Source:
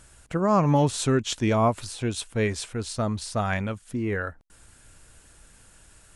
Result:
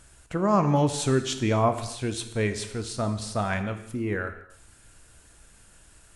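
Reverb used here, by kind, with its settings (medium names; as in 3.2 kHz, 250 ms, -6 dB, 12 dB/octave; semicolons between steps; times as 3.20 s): gated-style reverb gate 330 ms falling, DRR 8 dB; trim -1.5 dB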